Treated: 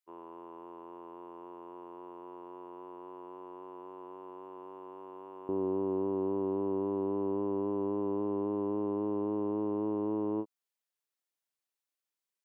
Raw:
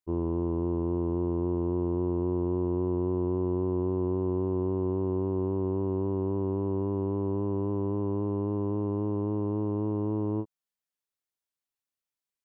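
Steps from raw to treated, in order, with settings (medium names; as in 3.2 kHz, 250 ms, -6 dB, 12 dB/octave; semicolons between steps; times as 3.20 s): high-pass 1.1 kHz 12 dB/octave, from 5.49 s 270 Hz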